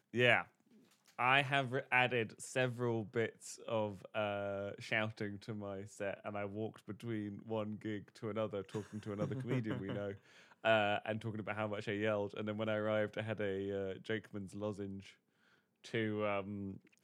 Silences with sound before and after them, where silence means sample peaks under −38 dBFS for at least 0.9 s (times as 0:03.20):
0:14.85–0:15.94